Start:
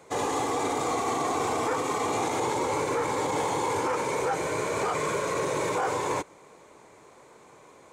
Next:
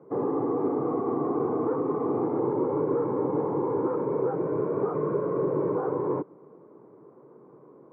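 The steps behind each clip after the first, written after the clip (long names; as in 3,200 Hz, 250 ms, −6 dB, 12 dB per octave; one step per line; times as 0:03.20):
elliptic band-pass filter 130–1,200 Hz, stop band 80 dB
low shelf with overshoot 520 Hz +8.5 dB, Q 1.5
level −4 dB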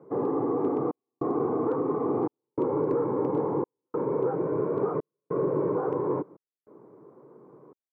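hard clipping −17 dBFS, distortion −42 dB
gate pattern "xxxxxx..x" 99 BPM −60 dB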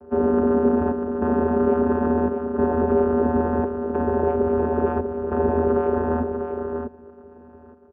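channel vocoder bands 8, square 80.6 Hz
single-tap delay 644 ms −7 dB
level +8.5 dB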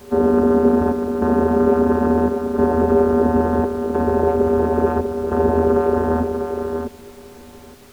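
background noise pink −51 dBFS
level +4 dB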